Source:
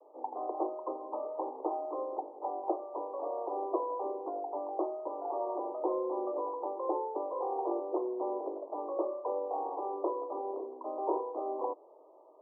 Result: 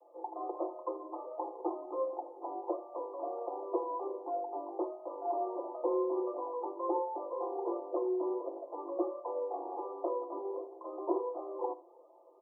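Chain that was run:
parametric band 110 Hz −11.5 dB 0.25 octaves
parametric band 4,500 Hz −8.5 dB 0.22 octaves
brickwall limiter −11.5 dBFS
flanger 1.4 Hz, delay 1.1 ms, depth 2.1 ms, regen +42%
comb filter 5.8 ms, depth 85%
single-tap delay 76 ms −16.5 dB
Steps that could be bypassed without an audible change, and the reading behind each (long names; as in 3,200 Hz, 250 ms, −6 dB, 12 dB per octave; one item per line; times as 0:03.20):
parametric band 110 Hz: nothing at its input below 240 Hz
parametric band 4,500 Hz: nothing at its input above 1,200 Hz
brickwall limiter −11.5 dBFS: peak of its input −17.5 dBFS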